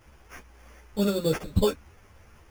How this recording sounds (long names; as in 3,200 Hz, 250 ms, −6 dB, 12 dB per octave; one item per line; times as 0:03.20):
aliases and images of a low sample rate 4,000 Hz, jitter 0%
a shimmering, thickened sound